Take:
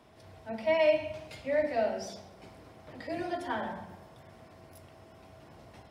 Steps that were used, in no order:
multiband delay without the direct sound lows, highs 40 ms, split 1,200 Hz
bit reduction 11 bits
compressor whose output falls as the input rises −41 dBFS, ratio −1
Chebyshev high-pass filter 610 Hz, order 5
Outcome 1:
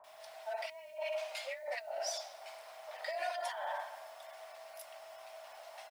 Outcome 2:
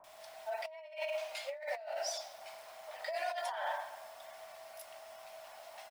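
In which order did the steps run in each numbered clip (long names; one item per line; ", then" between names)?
Chebyshev high-pass filter, then compressor whose output falls as the input rises, then bit reduction, then multiband delay without the direct sound
Chebyshev high-pass filter, then bit reduction, then multiband delay without the direct sound, then compressor whose output falls as the input rises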